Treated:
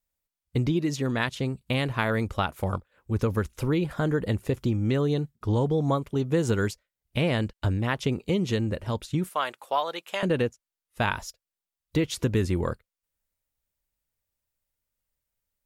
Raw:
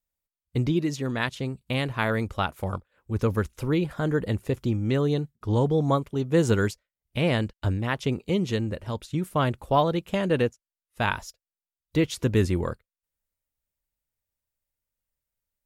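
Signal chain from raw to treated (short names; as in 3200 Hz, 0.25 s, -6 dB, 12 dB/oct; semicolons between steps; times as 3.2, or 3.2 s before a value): 9.29–10.23 HPF 800 Hz 12 dB/oct; compressor 3:1, threshold -24 dBFS, peak gain reduction 7 dB; gain +2.5 dB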